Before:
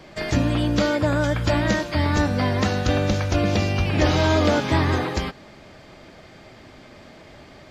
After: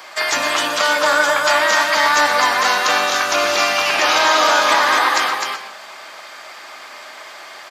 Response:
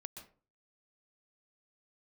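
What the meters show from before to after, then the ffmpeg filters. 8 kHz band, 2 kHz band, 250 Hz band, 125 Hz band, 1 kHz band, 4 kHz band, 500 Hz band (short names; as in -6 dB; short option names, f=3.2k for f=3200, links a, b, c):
+14.5 dB, +13.0 dB, -10.0 dB, under -25 dB, +12.5 dB, +12.0 dB, +3.5 dB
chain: -filter_complex "[0:a]highpass=f=1.1k:t=q:w=1.7,alimiter=limit=-17dB:level=0:latency=1:release=32,tiltshelf=f=1.4k:g=7,crystalizer=i=6:c=0,aecho=1:1:256:0.631,asplit=2[a][b];[1:a]atrim=start_sample=2205[c];[b][c]afir=irnorm=-1:irlink=0,volume=9dB[d];[a][d]amix=inputs=2:normalize=0,volume=-2.5dB"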